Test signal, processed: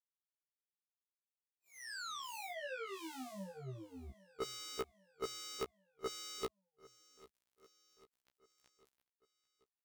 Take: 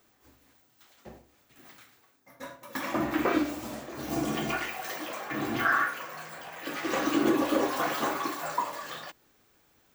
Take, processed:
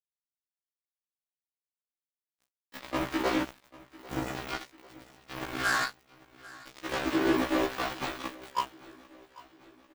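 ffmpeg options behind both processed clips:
ffmpeg -i in.wav -filter_complex "[0:a]aeval=exprs='val(0)+0.5*0.0126*sgn(val(0))':channel_layout=same,acrossover=split=640|2800[link_01][link_02][link_03];[link_03]acompressor=threshold=-45dB:ratio=10[link_04];[link_01][link_02][link_04]amix=inputs=3:normalize=0,acrusher=bits=3:mix=0:aa=0.5,aecho=1:1:794|1588|2382|3176:0.0891|0.0481|0.026|0.014,afftfilt=real='re*1.73*eq(mod(b,3),0)':imag='im*1.73*eq(mod(b,3),0)':win_size=2048:overlap=0.75" out.wav

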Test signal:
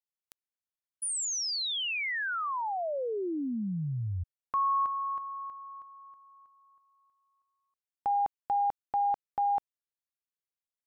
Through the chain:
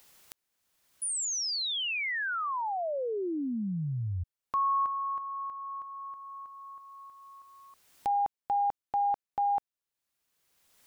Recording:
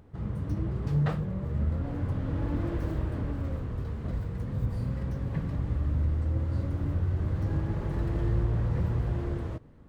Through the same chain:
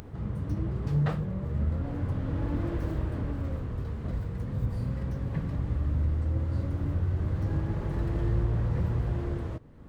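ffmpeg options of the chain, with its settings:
ffmpeg -i in.wav -af "acompressor=mode=upward:threshold=-31dB:ratio=2.5:attack=1.1:release=711:knee=2.83:detection=peak" out.wav

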